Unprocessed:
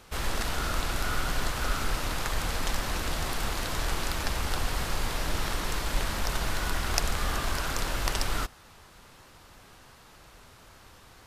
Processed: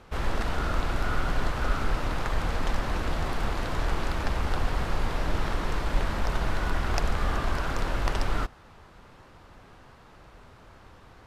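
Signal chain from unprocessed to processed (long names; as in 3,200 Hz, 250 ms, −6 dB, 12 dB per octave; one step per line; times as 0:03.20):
low-pass filter 1,400 Hz 6 dB per octave
level +3.5 dB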